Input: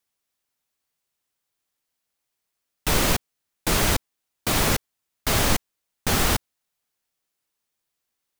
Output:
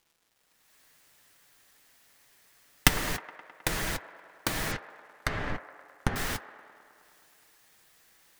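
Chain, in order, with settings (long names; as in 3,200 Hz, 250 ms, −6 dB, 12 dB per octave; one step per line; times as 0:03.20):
camcorder AGC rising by 40 dB per second
0:04.71–0:06.16: treble cut that deepens with the level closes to 1,700 Hz, closed at −15.5 dBFS
parametric band 1,800 Hz +7.5 dB 0.47 octaves
surface crackle 410 per second −44 dBFS
on a send: delay with a band-pass on its return 105 ms, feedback 74%, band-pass 920 Hz, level −13 dB
on the sum: flanger 0.24 Hz, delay 6 ms, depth 1.3 ms, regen −49%
level −8 dB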